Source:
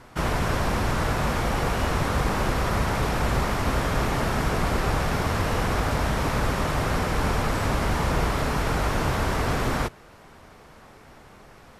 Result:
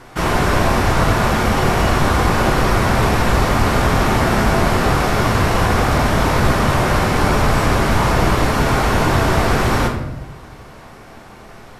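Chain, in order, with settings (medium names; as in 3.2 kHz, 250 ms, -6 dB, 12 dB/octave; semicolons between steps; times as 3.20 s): bass shelf 67 Hz -6 dB; on a send: reverberation RT60 0.90 s, pre-delay 3 ms, DRR 1.5 dB; on the sum: trim +7 dB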